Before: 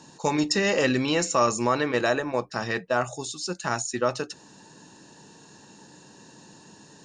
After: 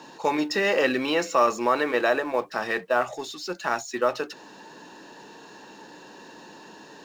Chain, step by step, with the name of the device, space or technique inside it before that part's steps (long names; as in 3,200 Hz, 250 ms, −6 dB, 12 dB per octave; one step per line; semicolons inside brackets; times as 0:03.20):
phone line with mismatched companding (band-pass filter 330–3,500 Hz; mu-law and A-law mismatch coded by mu)
level +1.5 dB